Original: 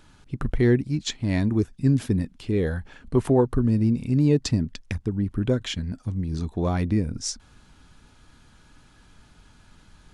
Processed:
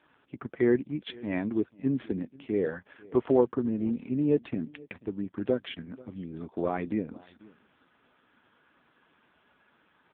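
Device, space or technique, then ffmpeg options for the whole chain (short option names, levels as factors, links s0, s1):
satellite phone: -filter_complex "[0:a]asettb=1/sr,asplit=3[s0][s1][s2];[s0]atrim=end=3.214[s3];[s1]atrim=start=3.21:end=3.72,asetpts=PTS-STARTPTS,afade=t=in:d=0.004:c=qsin,afade=t=out:st=0.506:d=0.004:c=qsin,equalizer=f=75:t=o:w=0.5:g=2.5[s4];[s2]atrim=start=3.716[s5];[s3][s4]acrossfade=d=0.004:c1=hsin:c2=qsin[s6];[s6][s5]acrossfade=d=0.004:c1=qsin:c2=hsin,highpass=310,lowpass=3100,aecho=1:1:488:0.0708" -ar 8000 -c:a libopencore_amrnb -b:a 5150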